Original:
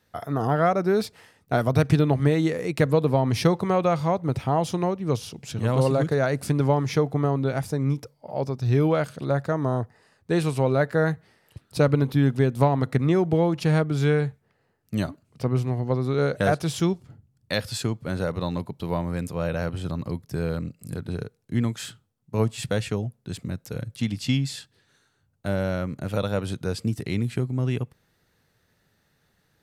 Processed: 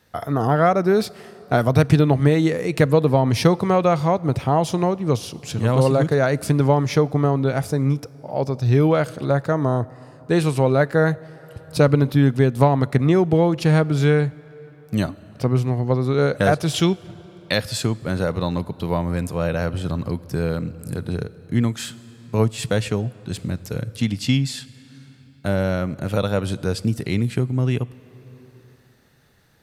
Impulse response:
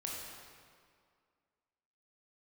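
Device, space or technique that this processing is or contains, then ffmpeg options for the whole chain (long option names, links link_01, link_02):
ducked reverb: -filter_complex "[0:a]asplit=3[link_01][link_02][link_03];[1:a]atrim=start_sample=2205[link_04];[link_02][link_04]afir=irnorm=-1:irlink=0[link_05];[link_03]apad=whole_len=1306441[link_06];[link_05][link_06]sidechaincompress=threshold=-38dB:ratio=8:attack=36:release=715,volume=-3dB[link_07];[link_01][link_07]amix=inputs=2:normalize=0,asettb=1/sr,asplit=3[link_08][link_09][link_10];[link_08]atrim=end=16.744[link_11];[link_09]atrim=start=16.74:end=17.53,asetpts=PTS-STARTPTS,afade=type=in:duration=0.004:curve=qsin,afade=type=out:start_time=0.786:duration=0.004:curve=qsin,equalizer=frequency=3000:width_type=o:width=1.1:gain=8[link_12];[link_10]atrim=start=17.526[link_13];[link_11][link_12]acrossfade=duration=0.004:curve1=hsin:curve2=qsin[link_14];[link_14][link_13]acrossfade=duration=0.004:curve1=qsin:curve2=hsin,volume=4dB"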